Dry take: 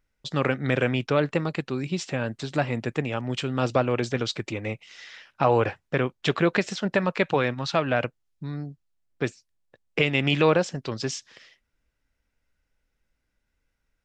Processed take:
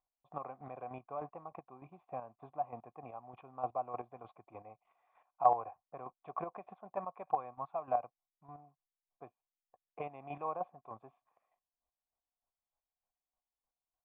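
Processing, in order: short-mantissa float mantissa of 2-bit; cascade formant filter a; square tremolo 3.3 Hz, depth 60%, duty 25%; trim +4 dB

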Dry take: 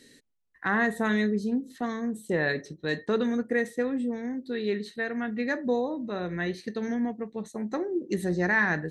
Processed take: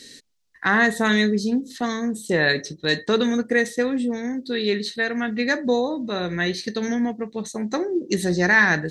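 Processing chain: peaking EQ 5.1 kHz +11.5 dB 1.7 oct; trim +5.5 dB

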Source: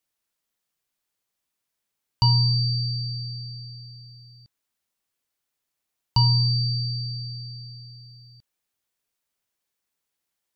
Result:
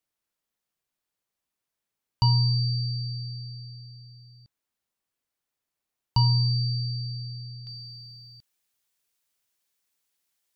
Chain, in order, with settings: treble shelf 2 kHz -4 dB, from 7.67 s +6.5 dB; trim -1.5 dB

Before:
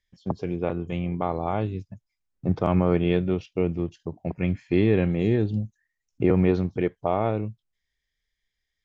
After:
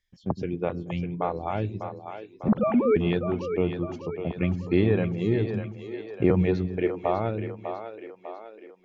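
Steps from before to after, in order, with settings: 2.48–2.96 s: formants replaced by sine waves; reverb removal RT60 1.7 s; two-band feedback delay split 340 Hz, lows 109 ms, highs 599 ms, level -8 dB

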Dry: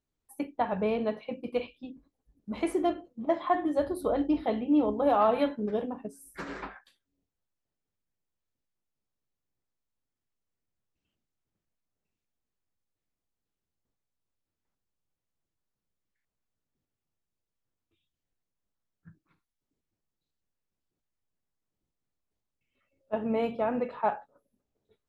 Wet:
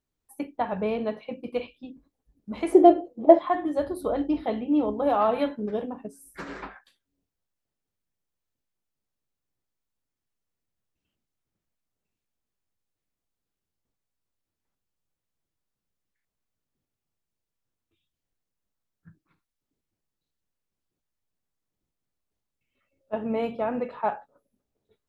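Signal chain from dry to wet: 2.72–3.39 s: high-order bell 510 Hz +12.5 dB; trim +1 dB

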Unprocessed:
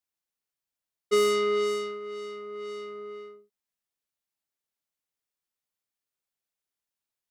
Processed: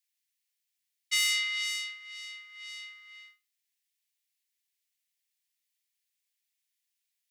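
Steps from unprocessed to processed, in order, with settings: steep high-pass 1.8 kHz 48 dB/octave; trim +6.5 dB

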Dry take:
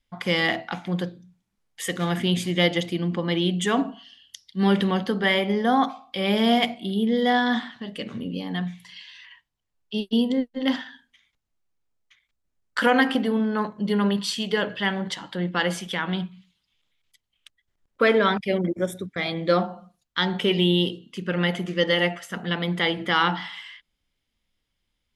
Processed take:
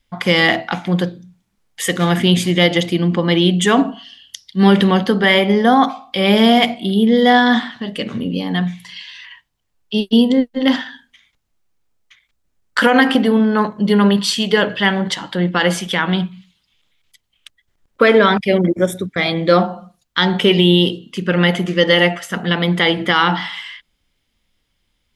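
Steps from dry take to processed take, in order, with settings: loudness maximiser +10.5 dB; trim -1 dB

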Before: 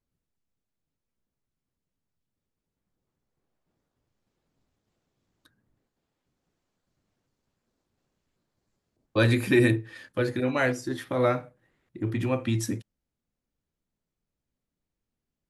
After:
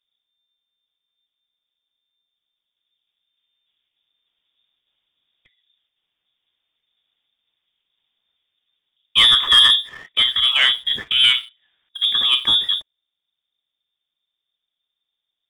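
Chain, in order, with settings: frequency inversion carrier 3.6 kHz; waveshaping leveller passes 1; trim +5.5 dB

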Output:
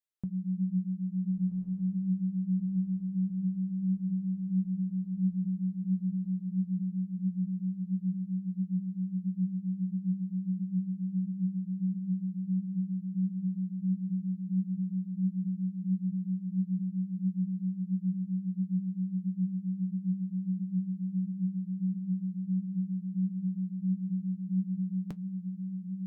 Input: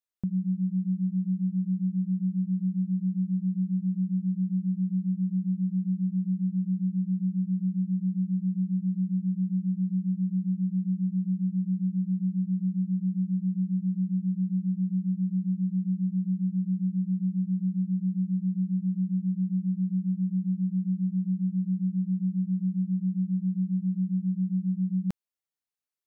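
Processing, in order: flange 1.5 Hz, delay 4.6 ms, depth 3.4 ms, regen +66%; echo that smears into a reverb 1453 ms, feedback 72%, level -5 dB

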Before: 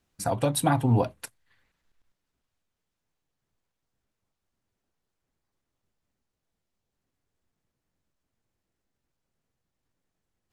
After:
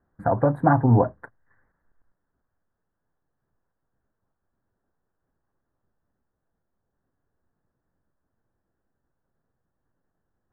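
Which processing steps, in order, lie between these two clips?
elliptic low-pass 1.7 kHz, stop band 40 dB; trim +5.5 dB

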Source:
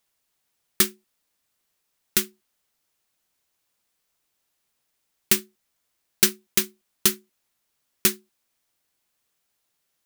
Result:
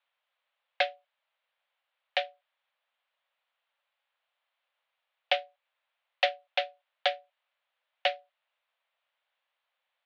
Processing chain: mistuned SSB +360 Hz 150–3200 Hz

